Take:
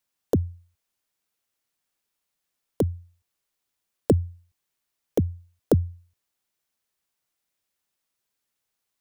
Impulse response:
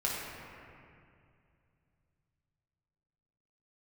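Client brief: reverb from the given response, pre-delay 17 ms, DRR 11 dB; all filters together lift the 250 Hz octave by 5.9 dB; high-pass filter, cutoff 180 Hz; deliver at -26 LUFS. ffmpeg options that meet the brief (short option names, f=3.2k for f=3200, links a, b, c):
-filter_complex "[0:a]highpass=180,equalizer=f=250:t=o:g=9,asplit=2[a][b];[1:a]atrim=start_sample=2205,adelay=17[c];[b][c]afir=irnorm=-1:irlink=0,volume=-18dB[d];[a][d]amix=inputs=2:normalize=0,volume=-0.5dB"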